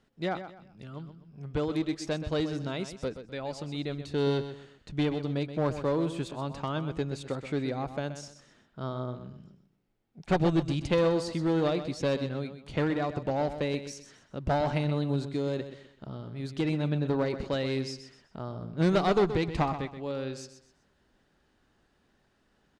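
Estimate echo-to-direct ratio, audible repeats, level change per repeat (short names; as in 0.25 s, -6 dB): -10.5 dB, 3, -10.0 dB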